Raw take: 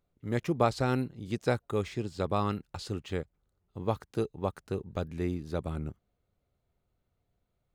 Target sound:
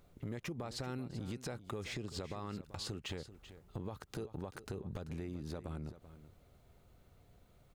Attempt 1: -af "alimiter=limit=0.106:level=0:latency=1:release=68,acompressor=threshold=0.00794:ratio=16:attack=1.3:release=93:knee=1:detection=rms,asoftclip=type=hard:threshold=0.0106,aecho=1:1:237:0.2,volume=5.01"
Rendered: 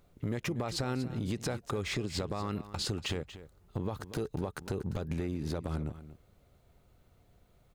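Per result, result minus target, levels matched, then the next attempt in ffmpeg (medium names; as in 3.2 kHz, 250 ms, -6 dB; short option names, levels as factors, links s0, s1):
compression: peak gain reduction -8 dB; echo 149 ms early
-af "alimiter=limit=0.106:level=0:latency=1:release=68,acompressor=threshold=0.00299:ratio=16:attack=1.3:release=93:knee=1:detection=rms,asoftclip=type=hard:threshold=0.0106,aecho=1:1:237:0.2,volume=5.01"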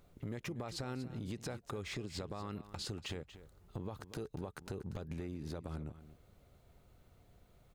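echo 149 ms early
-af "alimiter=limit=0.106:level=0:latency=1:release=68,acompressor=threshold=0.00299:ratio=16:attack=1.3:release=93:knee=1:detection=rms,asoftclip=type=hard:threshold=0.0106,aecho=1:1:386:0.2,volume=5.01"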